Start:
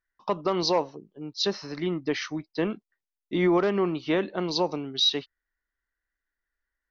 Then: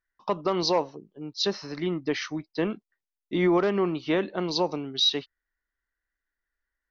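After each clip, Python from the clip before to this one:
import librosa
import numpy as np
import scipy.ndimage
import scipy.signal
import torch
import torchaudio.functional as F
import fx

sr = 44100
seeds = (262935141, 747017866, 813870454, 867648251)

y = x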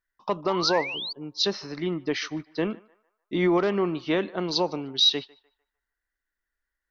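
y = fx.dynamic_eq(x, sr, hz=4000.0, q=0.96, threshold_db=-37.0, ratio=4.0, max_db=3)
y = fx.echo_banded(y, sr, ms=150, feedback_pct=43, hz=1100.0, wet_db=-20.5)
y = fx.spec_paint(y, sr, seeds[0], shape='rise', start_s=0.49, length_s=0.64, low_hz=830.0, high_hz=4700.0, level_db=-33.0)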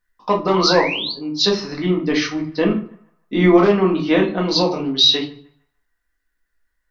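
y = fx.room_shoebox(x, sr, seeds[1], volume_m3=210.0, walls='furnished', distance_m=1.9)
y = y * librosa.db_to_amplitude(5.0)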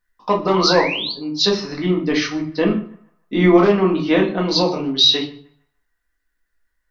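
y = x + 10.0 ** (-21.5 / 20.0) * np.pad(x, (int(121 * sr / 1000.0), 0))[:len(x)]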